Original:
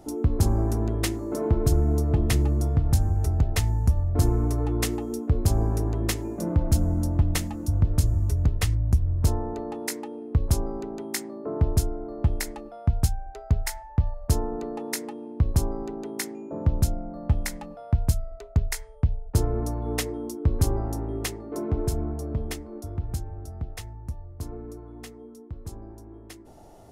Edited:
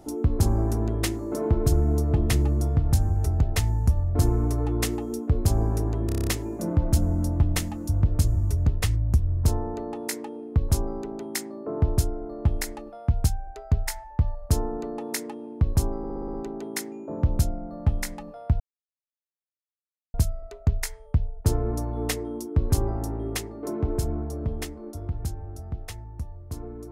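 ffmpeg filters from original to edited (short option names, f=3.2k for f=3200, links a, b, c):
-filter_complex "[0:a]asplit=15[a][b][c][d][e][f][g][h][i][j][k][l][m][n][o];[a]atrim=end=6.092[p];[b]atrim=start=6.058:end=6.092[q];[c]atrim=start=6.058:end=6.092[r];[d]atrim=start=6.058:end=6.092[s];[e]atrim=start=6.058:end=6.092[t];[f]atrim=start=6.058:end=6.092[u];[g]atrim=start=6.058:end=6.092[v];[h]atrim=start=6.058:end=15.832[w];[i]atrim=start=15.768:end=15.832[x];[j]atrim=start=15.768:end=15.832[y];[k]atrim=start=15.768:end=15.832[z];[l]atrim=start=15.768:end=15.832[aa];[m]atrim=start=15.768:end=15.832[ab];[n]atrim=start=15.768:end=18.03,asetpts=PTS-STARTPTS,afade=t=out:st=2.258:d=0.004:c=hsin,apad=pad_dur=1.54[ac];[o]atrim=start=18.03,asetpts=PTS-STARTPTS,afade=t=in:d=0.004:c=hsin[ad];[p][q]acrossfade=d=0.004:c1=hsin:c2=hsin[ae];[ae][r]acrossfade=d=0.004:c1=hsin:c2=hsin[af];[af][s]acrossfade=d=0.004:c1=hsin:c2=hsin[ag];[ag][t]acrossfade=d=0.004:c1=hsin:c2=hsin[ah];[ah][u]acrossfade=d=0.004:c1=hsin:c2=hsin[ai];[ai][v]acrossfade=d=0.004:c1=hsin:c2=hsin[aj];[aj][w]acrossfade=d=0.004:c1=hsin:c2=hsin[ak];[ak][x]acrossfade=d=0.004:c1=hsin:c2=hsin[al];[al][y]acrossfade=d=0.004:c1=hsin:c2=hsin[am];[am][z]acrossfade=d=0.004:c1=hsin:c2=hsin[an];[an][aa]acrossfade=d=0.004:c1=hsin:c2=hsin[ao];[ao][ab]acrossfade=d=0.004:c1=hsin:c2=hsin[ap];[ac][ad]concat=n=2:v=0:a=1[aq];[ap][aq]acrossfade=d=0.004:c1=hsin:c2=hsin"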